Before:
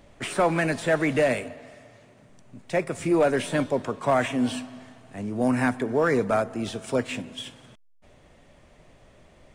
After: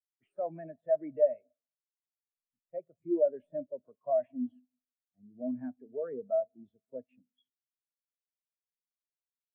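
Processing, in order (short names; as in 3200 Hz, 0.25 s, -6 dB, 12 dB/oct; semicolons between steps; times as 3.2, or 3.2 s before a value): dynamic EQ 620 Hz, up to +6 dB, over -39 dBFS, Q 4.4; sample leveller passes 1; spectral expander 2.5:1; gain -7 dB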